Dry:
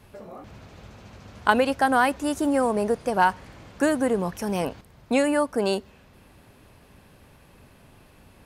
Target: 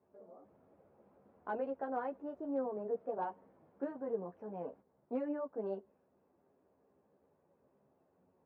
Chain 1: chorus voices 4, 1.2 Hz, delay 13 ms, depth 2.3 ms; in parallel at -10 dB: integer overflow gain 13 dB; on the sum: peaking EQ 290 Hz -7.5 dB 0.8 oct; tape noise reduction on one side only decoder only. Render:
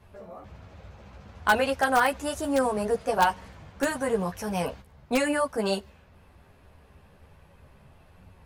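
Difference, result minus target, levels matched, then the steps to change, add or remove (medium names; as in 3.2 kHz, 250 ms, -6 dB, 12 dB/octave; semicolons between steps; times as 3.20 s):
500 Hz band -2.5 dB
add after the parallel path: ladder band-pass 410 Hz, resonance 25%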